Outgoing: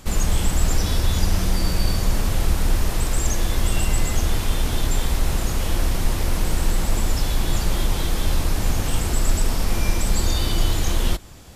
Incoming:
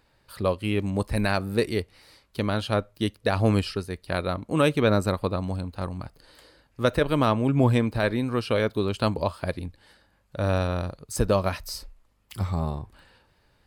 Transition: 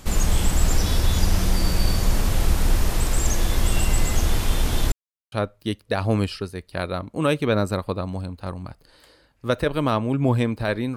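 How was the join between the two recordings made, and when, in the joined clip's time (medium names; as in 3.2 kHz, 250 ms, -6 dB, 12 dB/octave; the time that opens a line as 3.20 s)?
outgoing
4.92–5.32 s: mute
5.32 s: go over to incoming from 2.67 s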